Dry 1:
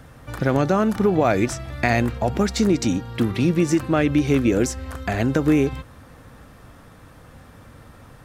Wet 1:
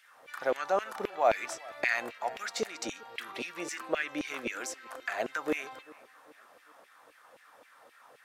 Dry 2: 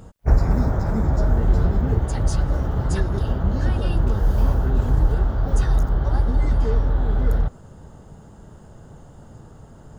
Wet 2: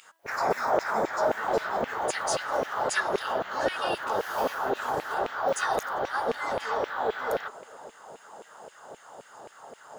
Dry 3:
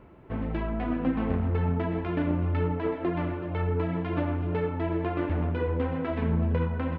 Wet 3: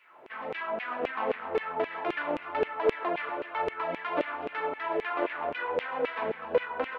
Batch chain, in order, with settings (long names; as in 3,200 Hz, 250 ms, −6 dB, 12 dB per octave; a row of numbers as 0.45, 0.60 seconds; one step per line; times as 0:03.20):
hum removal 328.2 Hz, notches 13
auto-filter high-pass saw down 3.8 Hz 450–2,600 Hz
tape delay 398 ms, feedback 48%, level −21.5 dB
normalise the peak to −12 dBFS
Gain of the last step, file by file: −9.5, +4.0, +2.5 decibels